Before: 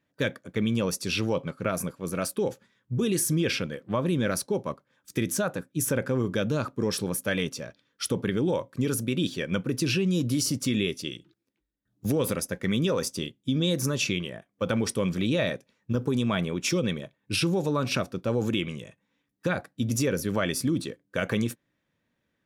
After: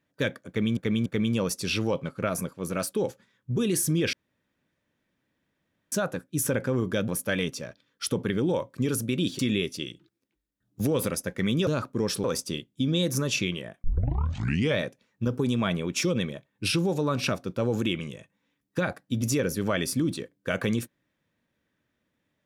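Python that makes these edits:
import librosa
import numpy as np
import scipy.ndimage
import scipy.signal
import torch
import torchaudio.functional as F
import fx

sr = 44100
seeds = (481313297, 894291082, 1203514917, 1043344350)

y = fx.edit(x, sr, fx.repeat(start_s=0.48, length_s=0.29, count=3),
    fx.room_tone_fill(start_s=3.55, length_s=1.79),
    fx.move(start_s=6.5, length_s=0.57, to_s=12.92),
    fx.cut(start_s=9.38, length_s=1.26),
    fx.tape_start(start_s=14.52, length_s=0.95), tone=tone)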